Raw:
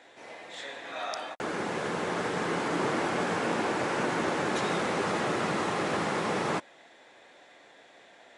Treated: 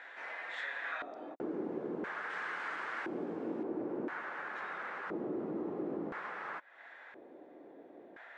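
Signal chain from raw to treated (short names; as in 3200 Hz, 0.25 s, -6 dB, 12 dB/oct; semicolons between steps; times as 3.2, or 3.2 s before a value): high shelf 2300 Hz -4.5 dB, from 2.3 s +2 dB, from 3.63 s -11 dB; compressor 5:1, threshold -43 dBFS, peak gain reduction 16 dB; LFO band-pass square 0.49 Hz 320–1600 Hz; gain +12 dB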